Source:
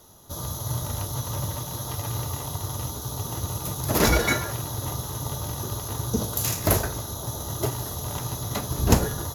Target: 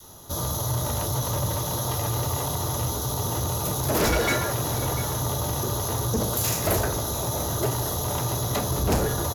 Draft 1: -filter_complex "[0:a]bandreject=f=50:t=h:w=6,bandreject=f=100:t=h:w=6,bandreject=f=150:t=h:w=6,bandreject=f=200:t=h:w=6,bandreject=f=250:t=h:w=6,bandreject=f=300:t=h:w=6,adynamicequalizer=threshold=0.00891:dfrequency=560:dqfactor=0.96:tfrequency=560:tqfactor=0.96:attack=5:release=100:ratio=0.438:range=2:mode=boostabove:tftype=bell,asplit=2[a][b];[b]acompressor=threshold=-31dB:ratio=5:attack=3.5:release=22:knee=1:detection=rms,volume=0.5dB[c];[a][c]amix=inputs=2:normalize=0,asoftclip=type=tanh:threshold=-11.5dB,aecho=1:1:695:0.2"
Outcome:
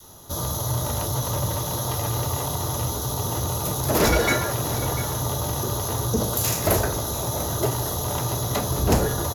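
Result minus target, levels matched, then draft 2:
soft clip: distortion -6 dB
-filter_complex "[0:a]bandreject=f=50:t=h:w=6,bandreject=f=100:t=h:w=6,bandreject=f=150:t=h:w=6,bandreject=f=200:t=h:w=6,bandreject=f=250:t=h:w=6,bandreject=f=300:t=h:w=6,adynamicequalizer=threshold=0.00891:dfrequency=560:dqfactor=0.96:tfrequency=560:tqfactor=0.96:attack=5:release=100:ratio=0.438:range=2:mode=boostabove:tftype=bell,asplit=2[a][b];[b]acompressor=threshold=-31dB:ratio=5:attack=3.5:release=22:knee=1:detection=rms,volume=0.5dB[c];[a][c]amix=inputs=2:normalize=0,asoftclip=type=tanh:threshold=-18dB,aecho=1:1:695:0.2"

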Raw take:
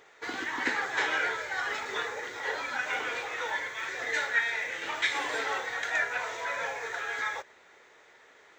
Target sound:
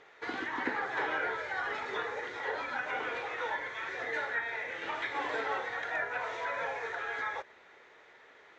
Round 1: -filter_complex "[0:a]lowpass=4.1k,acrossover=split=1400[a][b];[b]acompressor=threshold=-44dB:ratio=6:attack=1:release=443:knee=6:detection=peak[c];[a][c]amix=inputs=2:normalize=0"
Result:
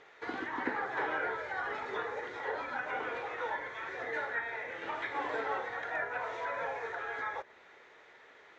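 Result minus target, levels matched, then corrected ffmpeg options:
compressor: peak gain reduction +6.5 dB
-filter_complex "[0:a]lowpass=4.1k,acrossover=split=1400[a][b];[b]acompressor=threshold=-36.5dB:ratio=6:attack=1:release=443:knee=6:detection=peak[c];[a][c]amix=inputs=2:normalize=0"

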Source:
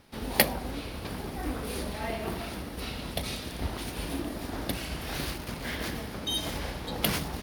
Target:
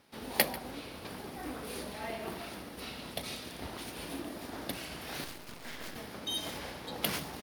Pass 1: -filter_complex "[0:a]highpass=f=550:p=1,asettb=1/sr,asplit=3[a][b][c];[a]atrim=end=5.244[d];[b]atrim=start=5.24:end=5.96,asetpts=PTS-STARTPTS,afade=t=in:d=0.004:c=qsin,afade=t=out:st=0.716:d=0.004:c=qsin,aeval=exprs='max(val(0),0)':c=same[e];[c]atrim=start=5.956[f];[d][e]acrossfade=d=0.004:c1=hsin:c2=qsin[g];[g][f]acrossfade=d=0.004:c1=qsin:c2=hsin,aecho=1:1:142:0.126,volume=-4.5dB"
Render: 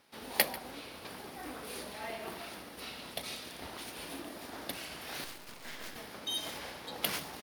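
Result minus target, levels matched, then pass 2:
250 Hz band -4.0 dB
-filter_complex "[0:a]highpass=f=220:p=1,asettb=1/sr,asplit=3[a][b][c];[a]atrim=end=5.244[d];[b]atrim=start=5.24:end=5.96,asetpts=PTS-STARTPTS,afade=t=in:d=0.004:c=qsin,afade=t=out:st=0.716:d=0.004:c=qsin,aeval=exprs='max(val(0),0)':c=same[e];[c]atrim=start=5.956[f];[d][e]acrossfade=d=0.004:c1=hsin:c2=qsin[g];[g][f]acrossfade=d=0.004:c1=qsin:c2=hsin,aecho=1:1:142:0.126,volume=-4.5dB"

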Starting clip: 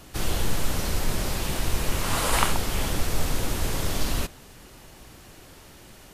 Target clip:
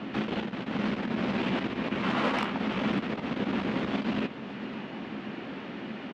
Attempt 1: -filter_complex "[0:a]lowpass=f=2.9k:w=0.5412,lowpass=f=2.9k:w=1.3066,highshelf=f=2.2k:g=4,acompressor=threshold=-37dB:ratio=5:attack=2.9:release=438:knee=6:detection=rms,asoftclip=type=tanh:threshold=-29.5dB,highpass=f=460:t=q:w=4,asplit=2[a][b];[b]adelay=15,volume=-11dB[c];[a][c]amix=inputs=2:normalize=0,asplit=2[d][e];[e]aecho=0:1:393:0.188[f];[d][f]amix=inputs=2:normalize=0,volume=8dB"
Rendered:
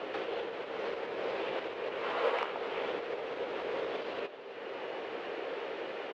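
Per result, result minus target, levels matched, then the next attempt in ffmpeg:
250 Hz band -12.0 dB; compressor: peak gain reduction +8 dB; echo 0.155 s early
-filter_complex "[0:a]lowpass=f=2.9k:w=0.5412,lowpass=f=2.9k:w=1.3066,highshelf=f=2.2k:g=4,acompressor=threshold=-37dB:ratio=5:attack=2.9:release=438:knee=6:detection=rms,asoftclip=type=tanh:threshold=-29.5dB,highpass=f=220:t=q:w=4,asplit=2[a][b];[b]adelay=15,volume=-11dB[c];[a][c]amix=inputs=2:normalize=0,asplit=2[d][e];[e]aecho=0:1:393:0.188[f];[d][f]amix=inputs=2:normalize=0,volume=8dB"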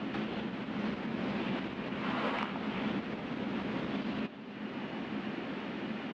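compressor: peak gain reduction +8 dB; echo 0.155 s early
-filter_complex "[0:a]lowpass=f=2.9k:w=0.5412,lowpass=f=2.9k:w=1.3066,highshelf=f=2.2k:g=4,acompressor=threshold=-27dB:ratio=5:attack=2.9:release=438:knee=6:detection=rms,asoftclip=type=tanh:threshold=-29.5dB,highpass=f=220:t=q:w=4,asplit=2[a][b];[b]adelay=15,volume=-11dB[c];[a][c]amix=inputs=2:normalize=0,asplit=2[d][e];[e]aecho=0:1:393:0.188[f];[d][f]amix=inputs=2:normalize=0,volume=8dB"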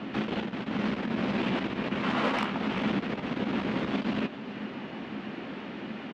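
echo 0.155 s early
-filter_complex "[0:a]lowpass=f=2.9k:w=0.5412,lowpass=f=2.9k:w=1.3066,highshelf=f=2.2k:g=4,acompressor=threshold=-27dB:ratio=5:attack=2.9:release=438:knee=6:detection=rms,asoftclip=type=tanh:threshold=-29.5dB,highpass=f=220:t=q:w=4,asplit=2[a][b];[b]adelay=15,volume=-11dB[c];[a][c]amix=inputs=2:normalize=0,asplit=2[d][e];[e]aecho=0:1:548:0.188[f];[d][f]amix=inputs=2:normalize=0,volume=8dB"

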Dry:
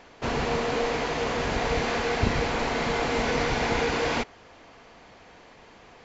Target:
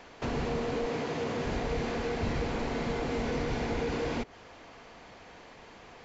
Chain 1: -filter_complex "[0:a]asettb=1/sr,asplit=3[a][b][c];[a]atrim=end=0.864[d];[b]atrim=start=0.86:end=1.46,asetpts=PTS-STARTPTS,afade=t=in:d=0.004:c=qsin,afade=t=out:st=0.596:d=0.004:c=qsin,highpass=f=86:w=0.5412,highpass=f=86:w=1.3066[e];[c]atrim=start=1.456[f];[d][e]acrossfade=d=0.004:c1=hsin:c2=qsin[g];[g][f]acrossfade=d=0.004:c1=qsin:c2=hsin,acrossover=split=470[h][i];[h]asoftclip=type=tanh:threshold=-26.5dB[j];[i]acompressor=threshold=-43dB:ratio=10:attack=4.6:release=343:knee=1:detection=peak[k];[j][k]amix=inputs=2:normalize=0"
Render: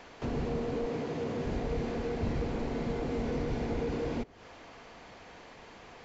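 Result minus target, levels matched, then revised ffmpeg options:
compressor: peak gain reduction +7 dB
-filter_complex "[0:a]asettb=1/sr,asplit=3[a][b][c];[a]atrim=end=0.864[d];[b]atrim=start=0.86:end=1.46,asetpts=PTS-STARTPTS,afade=t=in:d=0.004:c=qsin,afade=t=out:st=0.596:d=0.004:c=qsin,highpass=f=86:w=0.5412,highpass=f=86:w=1.3066[e];[c]atrim=start=1.456[f];[d][e]acrossfade=d=0.004:c1=hsin:c2=qsin[g];[g][f]acrossfade=d=0.004:c1=qsin:c2=hsin,acrossover=split=470[h][i];[h]asoftclip=type=tanh:threshold=-26.5dB[j];[i]acompressor=threshold=-35dB:ratio=10:attack=4.6:release=343:knee=1:detection=peak[k];[j][k]amix=inputs=2:normalize=0"

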